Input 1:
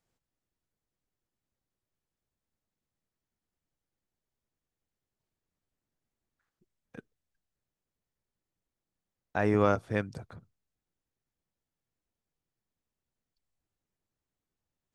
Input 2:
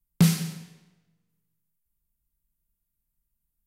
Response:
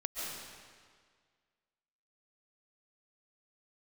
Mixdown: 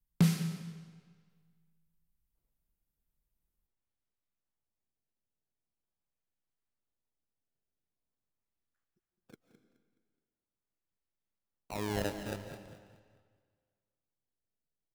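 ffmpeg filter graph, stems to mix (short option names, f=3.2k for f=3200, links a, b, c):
-filter_complex "[0:a]acrusher=samples=23:mix=1:aa=0.000001:lfo=1:lforange=36.8:lforate=0.43,adelay=2350,volume=-12dB,asplit=3[a][b][c];[b]volume=-9.5dB[d];[c]volume=-10dB[e];[1:a]highshelf=f=4k:g=-6,volume=-4dB,asplit=2[f][g];[g]volume=-17.5dB[h];[2:a]atrim=start_sample=2205[i];[d][h]amix=inputs=2:normalize=0[j];[j][i]afir=irnorm=-1:irlink=0[k];[e]aecho=0:1:211|422|633|844|1055:1|0.34|0.116|0.0393|0.0134[l];[a][f][k][l]amix=inputs=4:normalize=0,alimiter=limit=-16.5dB:level=0:latency=1:release=454"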